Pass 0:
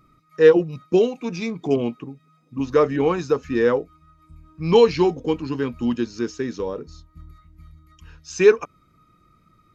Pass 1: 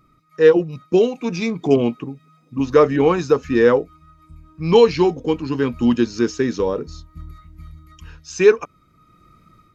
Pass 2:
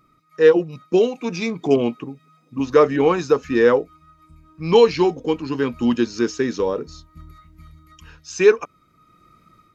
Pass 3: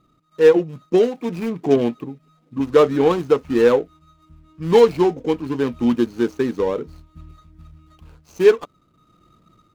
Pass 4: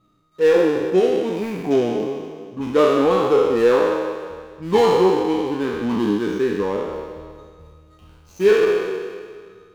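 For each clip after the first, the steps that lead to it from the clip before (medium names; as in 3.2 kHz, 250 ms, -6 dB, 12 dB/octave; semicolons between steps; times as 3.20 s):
level rider gain up to 7 dB
bass shelf 160 Hz -8 dB
median filter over 25 samples; trim +1 dB
spectral sustain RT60 1.90 s; flange 1.5 Hz, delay 9.3 ms, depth 1.4 ms, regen +43%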